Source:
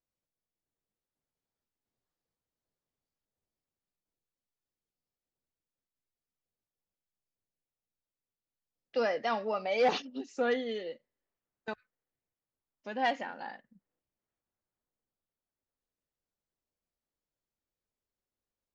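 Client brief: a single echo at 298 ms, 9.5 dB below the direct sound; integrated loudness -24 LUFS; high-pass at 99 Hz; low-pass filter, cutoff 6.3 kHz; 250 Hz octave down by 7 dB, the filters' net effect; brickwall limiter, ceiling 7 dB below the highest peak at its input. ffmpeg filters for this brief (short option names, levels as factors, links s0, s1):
-af "highpass=99,lowpass=6300,equalizer=f=250:t=o:g=-7.5,alimiter=level_in=1.06:limit=0.0631:level=0:latency=1,volume=0.944,aecho=1:1:298:0.335,volume=3.98"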